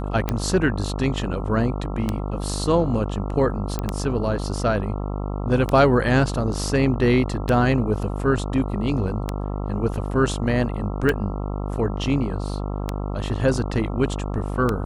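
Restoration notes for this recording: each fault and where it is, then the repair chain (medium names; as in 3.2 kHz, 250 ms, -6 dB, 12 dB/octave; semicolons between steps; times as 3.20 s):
buzz 50 Hz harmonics 27 -27 dBFS
tick 33 1/3 rpm -9 dBFS
3.79 s: pop -12 dBFS
9.94 s: dropout 2.4 ms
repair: de-click; de-hum 50 Hz, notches 27; interpolate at 9.94 s, 2.4 ms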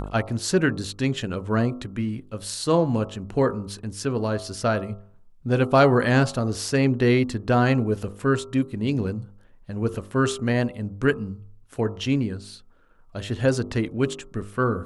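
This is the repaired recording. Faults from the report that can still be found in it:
nothing left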